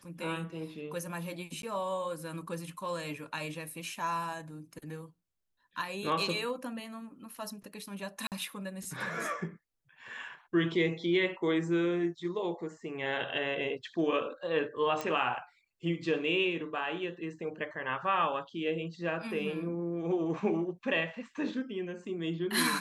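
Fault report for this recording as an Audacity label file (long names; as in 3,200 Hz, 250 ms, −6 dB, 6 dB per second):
1.620000	1.630000	drop-out 12 ms
8.270000	8.320000	drop-out 48 ms
15.010000	15.010000	click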